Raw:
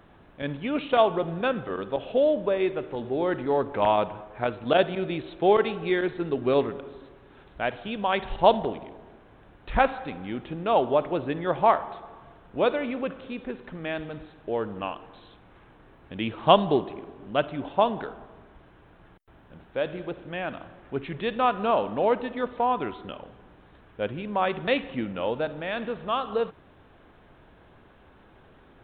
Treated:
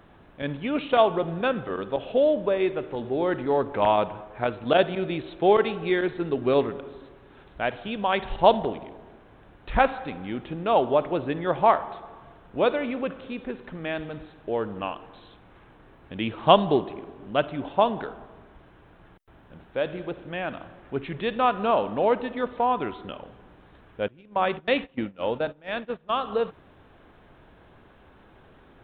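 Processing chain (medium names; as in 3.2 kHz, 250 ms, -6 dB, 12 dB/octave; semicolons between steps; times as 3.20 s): 24.08–26.19 s: gate -30 dBFS, range -20 dB; trim +1 dB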